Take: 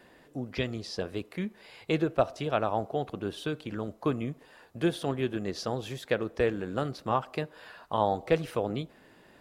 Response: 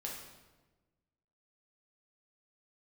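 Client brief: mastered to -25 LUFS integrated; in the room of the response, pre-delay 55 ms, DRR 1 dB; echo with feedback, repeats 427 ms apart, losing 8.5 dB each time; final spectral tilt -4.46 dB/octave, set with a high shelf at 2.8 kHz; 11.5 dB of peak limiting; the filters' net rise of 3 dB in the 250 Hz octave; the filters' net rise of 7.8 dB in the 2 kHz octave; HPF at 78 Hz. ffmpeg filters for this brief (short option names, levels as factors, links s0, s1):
-filter_complex "[0:a]highpass=78,equalizer=f=250:t=o:g=4,equalizer=f=2000:t=o:g=8,highshelf=f=2800:g=4.5,alimiter=limit=0.112:level=0:latency=1,aecho=1:1:427|854|1281|1708:0.376|0.143|0.0543|0.0206,asplit=2[s0][s1];[1:a]atrim=start_sample=2205,adelay=55[s2];[s1][s2]afir=irnorm=-1:irlink=0,volume=0.944[s3];[s0][s3]amix=inputs=2:normalize=0,volume=1.68"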